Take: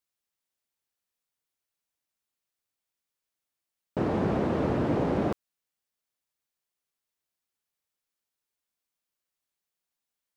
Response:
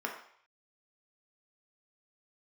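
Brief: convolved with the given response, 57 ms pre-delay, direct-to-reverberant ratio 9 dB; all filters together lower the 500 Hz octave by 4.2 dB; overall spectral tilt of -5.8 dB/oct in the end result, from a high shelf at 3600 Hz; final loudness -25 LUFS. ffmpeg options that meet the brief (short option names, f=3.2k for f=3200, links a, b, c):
-filter_complex "[0:a]equalizer=f=500:t=o:g=-5.5,highshelf=f=3.6k:g=3.5,asplit=2[a][b];[1:a]atrim=start_sample=2205,adelay=57[c];[b][c]afir=irnorm=-1:irlink=0,volume=-14dB[d];[a][d]amix=inputs=2:normalize=0,volume=5dB"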